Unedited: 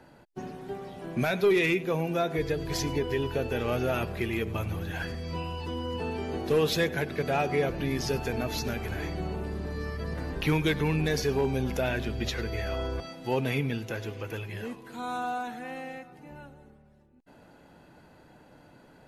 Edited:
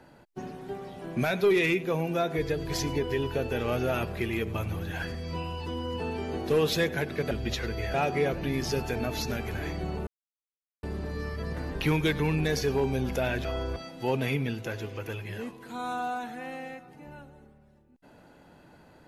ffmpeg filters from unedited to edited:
-filter_complex "[0:a]asplit=5[a][b][c][d][e];[a]atrim=end=7.312[f];[b]atrim=start=12.058:end=12.692[g];[c]atrim=start=7.308:end=9.44,asetpts=PTS-STARTPTS,afade=t=out:st=2.128:d=0.004:c=hsin,apad=pad_dur=0.76[h];[d]atrim=start=9.44:end=12.062,asetpts=PTS-STARTPTS,afade=t=in:d=0.004:c=hsin[i];[e]atrim=start=12.688[j];[f][g]acrossfade=d=0.004:c1=hsin:c2=hsin[k];[h][i]concat=n=2:v=0:a=1[l];[k][l]acrossfade=d=0.004:c1=hsin:c2=hsin[m];[m][j]acrossfade=d=0.004:c1=hsin:c2=hsin"

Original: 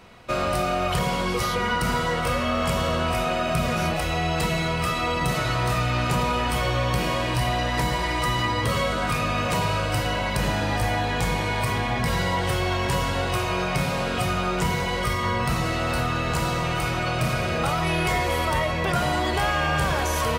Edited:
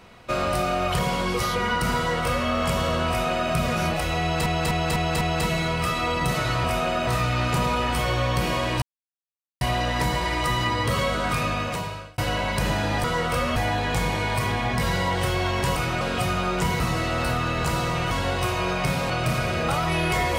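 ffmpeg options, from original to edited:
-filter_complex "[0:a]asplit=16[a][b][c][d][e][f][g][h][i][j][k][l][m][n][o][p];[a]atrim=end=4.462[q];[b]atrim=start=4.208:end=4.462[r];[c]atrim=start=4.208:end=4.462[s];[d]atrim=start=4.208:end=4.462[t];[e]atrim=start=4.208:end=5.642[u];[f]atrim=start=3.078:end=3.512[v];[g]atrim=start=5.638:end=7.39,asetpts=PTS-STARTPTS,afade=t=out:st=1.748:d=0.004:c=hsin,apad=pad_dur=0.79[w];[h]atrim=start=7.39:end=9.96,asetpts=PTS-STARTPTS,afade=t=in:d=0.004:c=hsin,afade=t=out:st=1.83:d=0.74[x];[i]atrim=start=9.96:end=10.822,asetpts=PTS-STARTPTS,afade=t=in:d=0.004:c=hsin[y];[j]atrim=start=1.968:end=2.492[z];[k]atrim=start=10.818:end=13.022[aa];[l]atrim=start=16.798:end=17.052[ab];[m]atrim=start=14.008:end=14.802[ac];[n]atrim=start=15.488:end=16.802[ad];[o]atrim=start=13.018:end=14.012[ae];[p]atrim=start=17.048[af];[q][r]acrossfade=d=0.004:c1=hsin:c2=hsin[ag];[ag][s]acrossfade=d=0.004:c1=hsin:c2=hsin[ah];[ah][t]acrossfade=d=0.004:c1=hsin:c2=hsin[ai];[ai][u]acrossfade=d=0.004:c1=hsin:c2=hsin[aj];[aj][v]acrossfade=d=0.004:c1=hsin:c2=hsin[ak];[w][x][y]concat=n=3:v=0:a=1[al];[ak][al]acrossfade=d=0.004:c1=hsin:c2=hsin[am];[am][z]acrossfade=d=0.004:c1=hsin:c2=hsin[an];[an][aa]acrossfade=d=0.004:c1=hsin:c2=hsin[ao];[ao][ab]acrossfade=d=0.004:c1=hsin:c2=hsin[ap];[ap][ac]acrossfade=d=0.004:c1=hsin:c2=hsin[aq];[aq][ad]acrossfade=d=0.004:c1=hsin:c2=hsin[ar];[ar][ae]acrossfade=d=0.004:c1=hsin:c2=hsin[as];[as][af]acrossfade=d=0.004:c1=hsin:c2=hsin"

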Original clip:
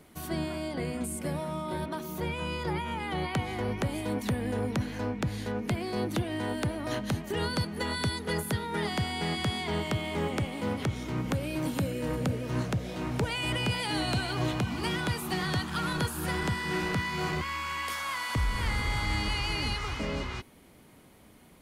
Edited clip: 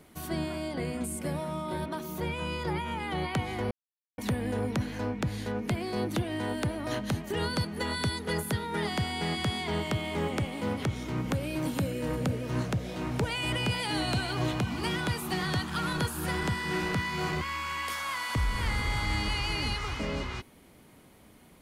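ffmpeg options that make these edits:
-filter_complex "[0:a]asplit=3[a][b][c];[a]atrim=end=3.71,asetpts=PTS-STARTPTS,afade=t=out:st=3.706:d=0.004:c=hsin[d];[b]atrim=start=3.71:end=4.18,asetpts=PTS-STARTPTS,volume=0[e];[c]atrim=start=4.18,asetpts=PTS-STARTPTS,afade=t=in:d=0.004:c=hsin[f];[d][e][f]concat=n=3:v=0:a=1"

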